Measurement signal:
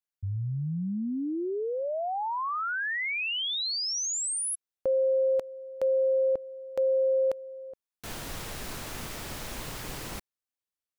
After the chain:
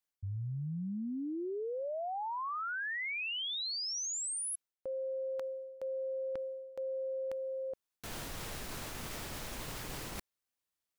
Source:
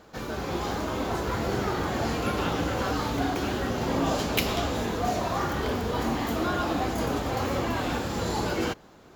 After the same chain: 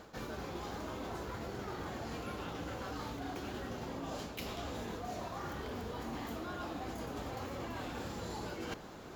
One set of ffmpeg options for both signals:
-af "areverse,acompressor=threshold=-38dB:ratio=20:attack=1.6:release=513:knee=1:detection=peak,areverse,asoftclip=type=hard:threshold=-30dB,volume=3dB"

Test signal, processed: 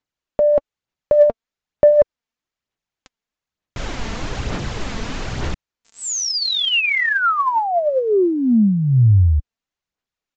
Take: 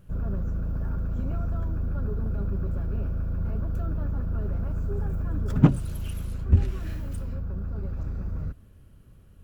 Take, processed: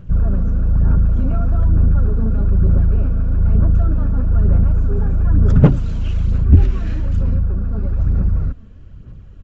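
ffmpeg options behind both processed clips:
-af "bass=f=250:g=4,treble=f=4k:g=-5,aphaser=in_gain=1:out_gain=1:delay=4.5:decay=0.4:speed=1.1:type=sinusoidal,aresample=16000,aeval=exprs='0.944*sin(PI/2*1.78*val(0)/0.944)':c=same,aresample=44100,volume=-1dB"

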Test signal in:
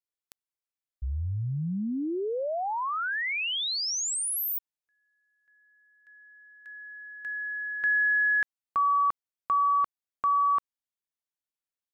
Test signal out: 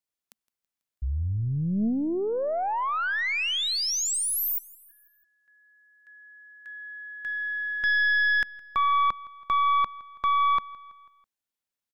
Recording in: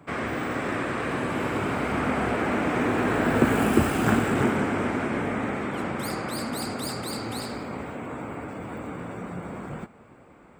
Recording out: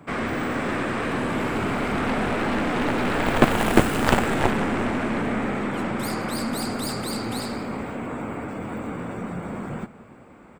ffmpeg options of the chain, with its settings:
-af "equalizer=f=220:w=4.2:g=4.5,aeval=exprs='0.631*(cos(1*acos(clip(val(0)/0.631,-1,1)))-cos(1*PI/2))+0.0708*(cos(6*acos(clip(val(0)/0.631,-1,1)))-cos(6*PI/2))+0.2*(cos(7*acos(clip(val(0)/0.631,-1,1)))-cos(7*PI/2))':c=same,aecho=1:1:164|328|492|656:0.075|0.0405|0.0219|0.0118,volume=1.5dB"

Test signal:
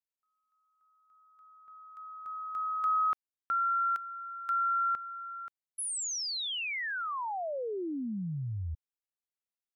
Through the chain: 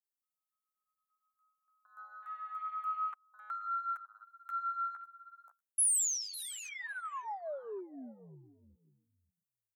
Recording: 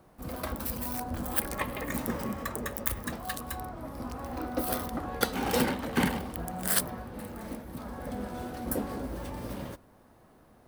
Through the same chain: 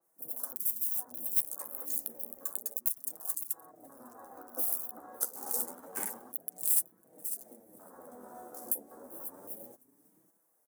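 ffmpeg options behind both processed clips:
-filter_complex "[0:a]asplit=2[a][b];[b]aecho=0:1:550|1100:0.141|0.0339[c];[a][c]amix=inputs=2:normalize=0,aexciter=amount=10.9:drive=2.9:freq=6.2k,equalizer=f=2.8k:t=o:w=0.58:g=-5.5,acompressor=threshold=-37dB:ratio=1.5:attack=0.43:release=479:knee=1:detection=peak,afwtdn=0.00708,flanger=delay=6:depth=7.9:regen=7:speed=0.29:shape=sinusoidal,asoftclip=type=tanh:threshold=-12dB,highpass=390,adynamicequalizer=threshold=0.00398:dfrequency=2200:dqfactor=0.7:tfrequency=2200:tqfactor=0.7:attack=5:release=100:ratio=0.375:range=2:mode=cutabove:tftype=highshelf"

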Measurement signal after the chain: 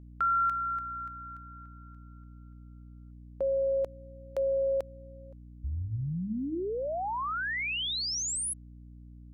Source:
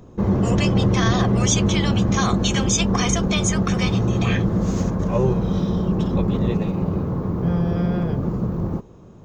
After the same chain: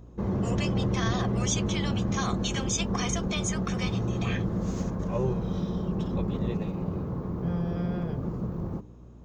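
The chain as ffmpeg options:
-af "bandreject=f=99.32:t=h:w=4,bandreject=f=198.64:t=h:w=4,bandreject=f=297.96:t=h:w=4,aeval=exprs='val(0)+0.0112*(sin(2*PI*60*n/s)+sin(2*PI*2*60*n/s)/2+sin(2*PI*3*60*n/s)/3+sin(2*PI*4*60*n/s)/4+sin(2*PI*5*60*n/s)/5)':c=same,volume=-8.5dB"

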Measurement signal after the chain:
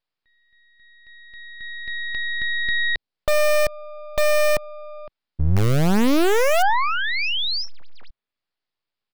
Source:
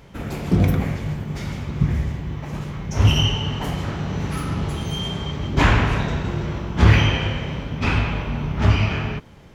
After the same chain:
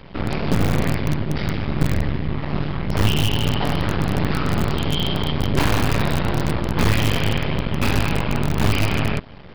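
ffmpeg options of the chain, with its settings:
-filter_complex "[0:a]acrossover=split=93|800|4000[a][b][c][d];[a]acompressor=threshold=-30dB:ratio=4[e];[b]acompressor=threshold=-20dB:ratio=4[f];[c]acompressor=threshold=-32dB:ratio=4[g];[d]acompressor=threshold=-38dB:ratio=4[h];[e][f][g][h]amix=inputs=4:normalize=0,aeval=exprs='max(val(0),0)':c=same,aresample=11025,aresample=44100,asplit=2[i][j];[j]aeval=exprs='(mod(8.41*val(0)+1,2)-1)/8.41':c=same,volume=-9.5dB[k];[i][k]amix=inputs=2:normalize=0,volume=7dB"

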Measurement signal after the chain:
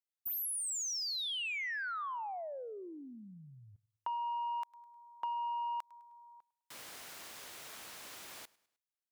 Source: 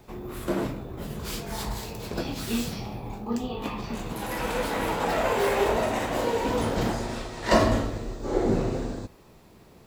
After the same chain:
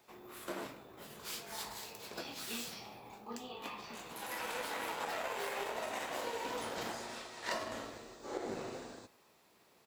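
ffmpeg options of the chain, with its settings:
-af "highpass=f=1k:p=1,aecho=1:1:103|206|309:0.0708|0.0311|0.0137,aeval=exprs='0.251*(cos(1*acos(clip(val(0)/0.251,-1,1)))-cos(1*PI/2))+0.0282*(cos(5*acos(clip(val(0)/0.251,-1,1)))-cos(5*PI/2))+0.0316*(cos(7*acos(clip(val(0)/0.251,-1,1)))-cos(7*PI/2))':c=same,acompressor=threshold=-31dB:ratio=10,volume=-3.5dB"

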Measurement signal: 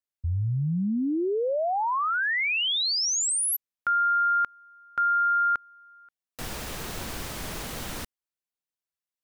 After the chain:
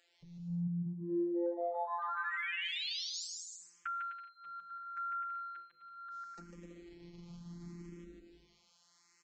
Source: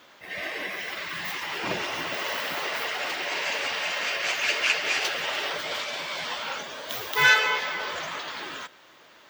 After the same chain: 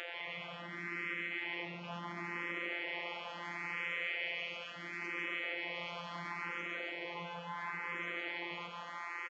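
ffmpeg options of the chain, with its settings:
-filter_complex "[0:a]acrossover=split=310[a][b];[b]acompressor=threshold=-41dB:ratio=4:attack=0.28:release=542:knee=2.83:detection=peak[c];[a][c]amix=inputs=2:normalize=0,afftfilt=real='hypot(re,im)*cos(PI*b)':imag='0':win_size=1024:overlap=0.75,bandreject=f=50:t=h:w=6,bandreject=f=100:t=h:w=6,bandreject=f=150:t=h:w=6,bandreject=f=200:t=h:w=6,bandreject=f=250:t=h:w=6,bandreject=f=300:t=h:w=6,bandreject=f=350:t=h:w=6,bandreject=f=400:t=h:w=6,bandreject=f=450:t=h:w=6,bandreject=f=500:t=h:w=6,alimiter=level_in=5dB:limit=-24dB:level=0:latency=1:release=205,volume=-5dB,acompressor=mode=upward:threshold=-43dB:ratio=4:attack=12:release=20:knee=2.83:detection=peak,afwtdn=0.00708,asplit=2[d][e];[e]aecho=0:1:150|255|328.5|380|416:0.631|0.398|0.251|0.158|0.1[f];[d][f]amix=inputs=2:normalize=0,aresample=16000,aresample=44100,highpass=f=67:p=1,equalizer=f=100:t=o:w=1.6:g=-13.5,asplit=2[g][h];[h]afreqshift=0.73[i];[g][i]amix=inputs=2:normalize=1,volume=3.5dB"

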